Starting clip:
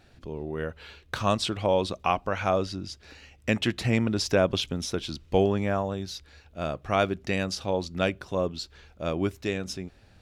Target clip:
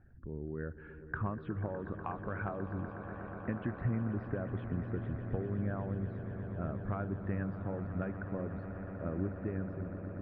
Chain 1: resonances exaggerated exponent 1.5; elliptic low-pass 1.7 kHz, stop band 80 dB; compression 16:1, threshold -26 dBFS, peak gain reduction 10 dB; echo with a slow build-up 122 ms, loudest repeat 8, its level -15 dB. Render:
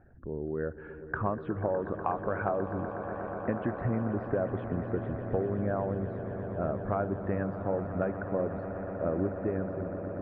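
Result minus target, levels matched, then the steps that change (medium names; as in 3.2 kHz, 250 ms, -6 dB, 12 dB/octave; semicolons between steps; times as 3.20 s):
500 Hz band +5.0 dB
add after compression: peaking EQ 620 Hz -12 dB 2.1 oct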